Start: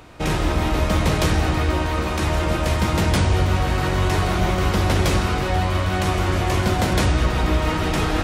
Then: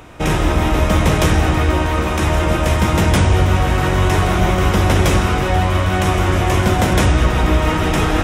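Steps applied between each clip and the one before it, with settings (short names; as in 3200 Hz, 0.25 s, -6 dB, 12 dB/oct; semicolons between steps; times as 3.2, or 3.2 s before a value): bell 4400 Hz -9.5 dB 0.26 oct; gain +5 dB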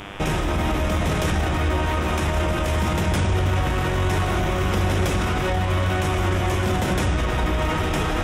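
limiter -14.5 dBFS, peak gain reduction 10.5 dB; buzz 100 Hz, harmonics 35, -39 dBFS -1 dB/oct; on a send at -14 dB: reverb RT60 0.30 s, pre-delay 5 ms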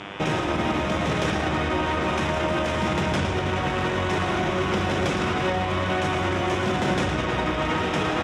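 BPF 130–5700 Hz; echo 0.112 s -9 dB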